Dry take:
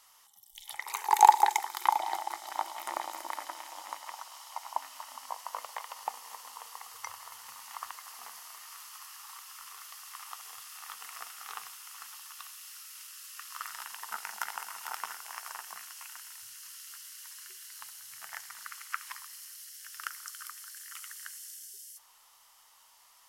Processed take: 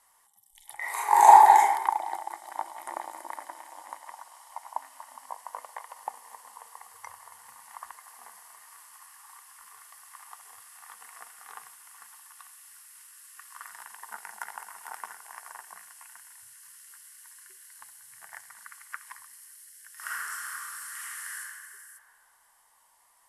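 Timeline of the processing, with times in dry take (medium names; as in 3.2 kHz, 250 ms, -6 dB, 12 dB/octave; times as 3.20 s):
0.76–1.68 s: reverb throw, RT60 0.87 s, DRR -8.5 dB
19.94–21.38 s: reverb throw, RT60 2.3 s, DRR -11.5 dB
whole clip: steep low-pass 12 kHz 48 dB/octave; high-order bell 4 kHz -10.5 dB; band-stop 1.3 kHz, Q 5.9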